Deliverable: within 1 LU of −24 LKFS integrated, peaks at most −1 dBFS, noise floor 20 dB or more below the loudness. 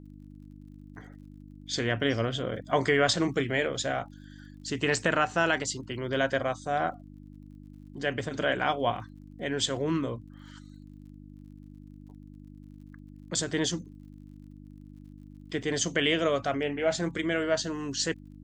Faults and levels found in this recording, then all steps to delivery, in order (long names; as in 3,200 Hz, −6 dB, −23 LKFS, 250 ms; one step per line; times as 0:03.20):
crackle rate 43 per second; mains hum 50 Hz; hum harmonics up to 300 Hz; level of the hum −45 dBFS; integrated loudness −29.0 LKFS; sample peak −9.5 dBFS; target loudness −24.0 LKFS
→ click removal
hum removal 50 Hz, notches 6
level +5 dB